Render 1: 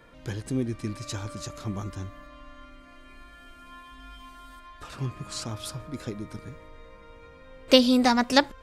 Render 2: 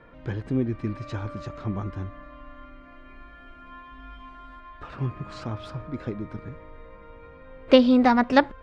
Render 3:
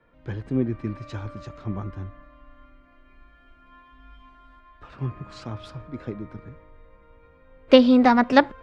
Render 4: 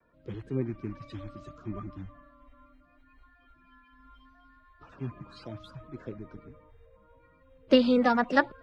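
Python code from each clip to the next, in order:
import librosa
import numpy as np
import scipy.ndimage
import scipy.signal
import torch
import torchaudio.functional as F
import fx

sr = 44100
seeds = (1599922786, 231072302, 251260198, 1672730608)

y1 = scipy.signal.sosfilt(scipy.signal.butter(2, 2100.0, 'lowpass', fs=sr, output='sos'), x)
y1 = y1 * 10.0 ** (3.0 / 20.0)
y2 = fx.band_widen(y1, sr, depth_pct=40)
y2 = y2 * 10.0 ** (-1.5 / 20.0)
y3 = fx.spec_quant(y2, sr, step_db=30)
y3 = fx.vibrato(y3, sr, rate_hz=0.72, depth_cents=27.0)
y3 = y3 * 10.0 ** (-6.5 / 20.0)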